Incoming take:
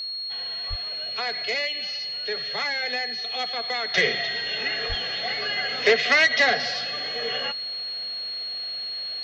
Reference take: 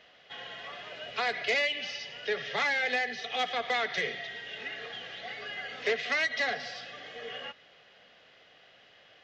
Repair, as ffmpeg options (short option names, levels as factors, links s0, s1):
-filter_complex "[0:a]adeclick=t=4,bandreject=f=4300:w=30,asplit=3[s0][s1][s2];[s0]afade=t=out:st=0.69:d=0.02[s3];[s1]highpass=f=140:w=0.5412,highpass=f=140:w=1.3066,afade=t=in:st=0.69:d=0.02,afade=t=out:st=0.81:d=0.02[s4];[s2]afade=t=in:st=0.81:d=0.02[s5];[s3][s4][s5]amix=inputs=3:normalize=0,asplit=3[s6][s7][s8];[s6]afade=t=out:st=4.88:d=0.02[s9];[s7]highpass=f=140:w=0.5412,highpass=f=140:w=1.3066,afade=t=in:st=4.88:d=0.02,afade=t=out:st=5:d=0.02[s10];[s8]afade=t=in:st=5:d=0.02[s11];[s9][s10][s11]amix=inputs=3:normalize=0,asetnsamples=n=441:p=0,asendcmd='3.94 volume volume -10.5dB',volume=1"